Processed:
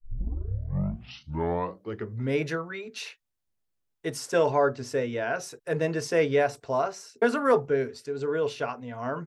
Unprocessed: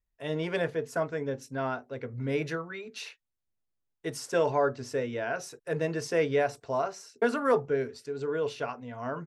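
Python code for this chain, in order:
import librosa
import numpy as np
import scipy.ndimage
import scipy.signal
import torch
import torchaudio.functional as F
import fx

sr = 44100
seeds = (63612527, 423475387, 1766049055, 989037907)

y = fx.tape_start_head(x, sr, length_s=2.32)
y = F.gain(torch.from_numpy(y), 3.0).numpy()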